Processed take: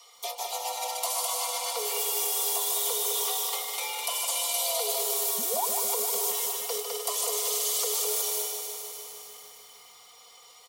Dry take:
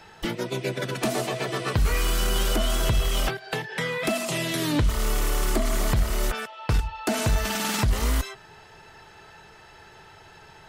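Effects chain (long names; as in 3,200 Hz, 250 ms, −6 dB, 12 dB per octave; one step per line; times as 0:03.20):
parametric band 790 Hz +6 dB 2 octaves
frequency shifter +370 Hz
notch filter 2,600 Hz, Q 16
loudspeakers that aren't time-aligned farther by 71 metres −5 dB, 89 metres −11 dB
sound drawn into the spectrogram rise, 0:05.38–0:05.66, 200–1,100 Hz −12 dBFS
first-order pre-emphasis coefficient 0.9
comb filter 4.3 ms, depth 69%
reversed playback
downward compressor 20 to 1, threshold −29 dBFS, peak gain reduction 7.5 dB
reversed playback
phaser with its sweep stopped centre 680 Hz, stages 4
feedback echo at a low word length 152 ms, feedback 80%, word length 10 bits, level −7 dB
level +5 dB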